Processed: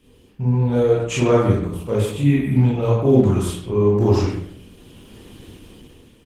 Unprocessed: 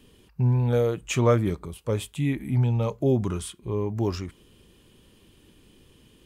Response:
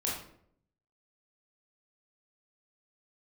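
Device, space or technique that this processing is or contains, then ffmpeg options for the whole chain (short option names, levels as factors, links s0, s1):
speakerphone in a meeting room: -filter_complex "[1:a]atrim=start_sample=2205[s0];[0:a][s0]afir=irnorm=-1:irlink=0,asplit=2[s1][s2];[s2]adelay=100,highpass=300,lowpass=3400,asoftclip=type=hard:threshold=0.251,volume=0.447[s3];[s1][s3]amix=inputs=2:normalize=0,dynaudnorm=f=220:g=7:m=3.98,volume=0.794" -ar 48000 -c:a libopus -b:a 16k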